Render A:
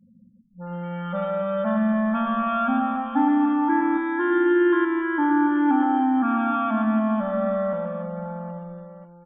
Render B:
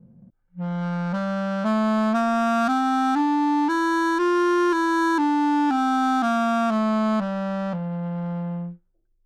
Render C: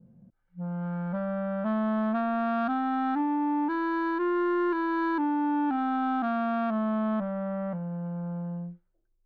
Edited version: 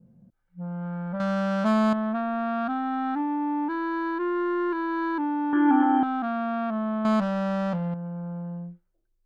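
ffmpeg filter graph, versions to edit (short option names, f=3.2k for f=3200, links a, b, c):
-filter_complex "[1:a]asplit=2[a][b];[2:a]asplit=4[c][d][e][f];[c]atrim=end=1.202[g];[a]atrim=start=1.198:end=1.932[h];[d]atrim=start=1.928:end=5.532[i];[0:a]atrim=start=5.528:end=6.032[j];[e]atrim=start=6.028:end=7.052[k];[b]atrim=start=7.048:end=7.942[l];[f]atrim=start=7.938[m];[g][h]acrossfade=d=0.004:c1=hsin:c2=hsin[n];[n][i]acrossfade=d=0.004:c1=hsin:c2=hsin[o];[o][j]acrossfade=d=0.004:c1=hsin:c2=hsin[p];[p][k]acrossfade=d=0.004:c1=hsin:c2=hsin[q];[q][l]acrossfade=d=0.004:c1=hsin:c2=hsin[r];[r][m]acrossfade=d=0.004:c1=hsin:c2=hsin"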